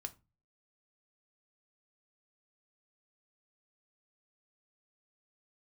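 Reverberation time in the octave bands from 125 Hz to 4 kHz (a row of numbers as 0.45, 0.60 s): 0.55, 0.40, 0.25, 0.25, 0.20, 0.20 s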